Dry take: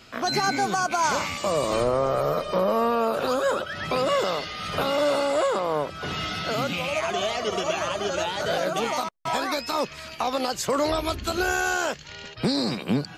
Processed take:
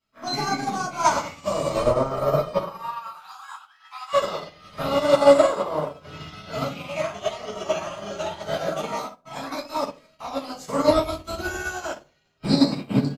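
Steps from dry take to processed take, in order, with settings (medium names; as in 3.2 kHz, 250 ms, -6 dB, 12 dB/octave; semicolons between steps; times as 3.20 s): 2.58–4.13 s: Chebyshev high-pass 760 Hz, order 8; crackle 390 per s -45 dBFS; delay 508 ms -23.5 dB; reverberation RT60 0.60 s, pre-delay 5 ms, DRR -6.5 dB; upward expansion 2.5:1, over -31 dBFS; trim -2 dB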